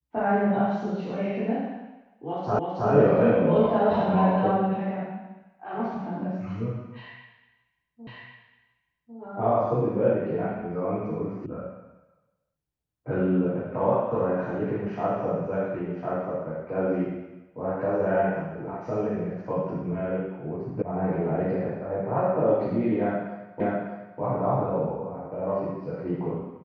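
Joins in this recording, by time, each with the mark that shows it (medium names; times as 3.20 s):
2.59 s: repeat of the last 0.32 s
8.07 s: repeat of the last 1.1 s
11.46 s: sound stops dead
20.82 s: sound stops dead
23.60 s: repeat of the last 0.6 s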